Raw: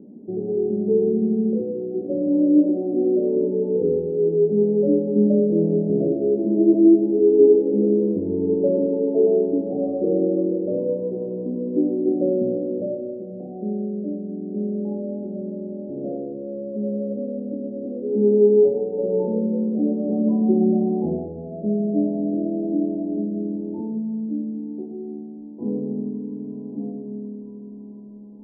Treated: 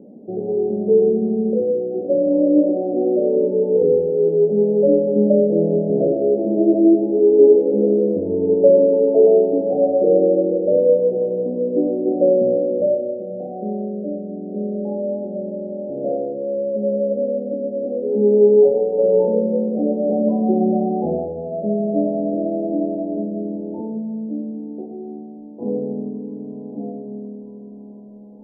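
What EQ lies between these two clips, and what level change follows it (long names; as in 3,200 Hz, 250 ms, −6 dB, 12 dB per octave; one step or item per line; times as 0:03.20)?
flat-topped bell 620 Hz +10.5 dB 1 octave
0.0 dB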